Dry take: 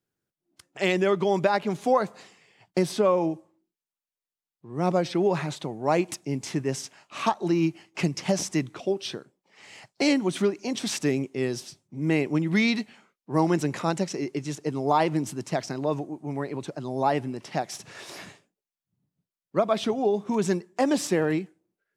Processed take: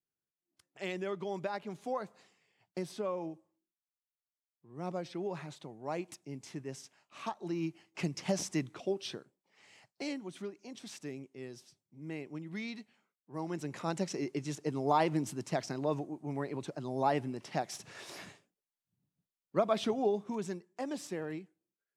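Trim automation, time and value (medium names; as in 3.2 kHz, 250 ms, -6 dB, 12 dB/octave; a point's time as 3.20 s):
7.25 s -14.5 dB
8.32 s -7.5 dB
9.14 s -7.5 dB
10.27 s -18 dB
13.32 s -18 dB
14.09 s -6 dB
20.06 s -6 dB
20.54 s -15 dB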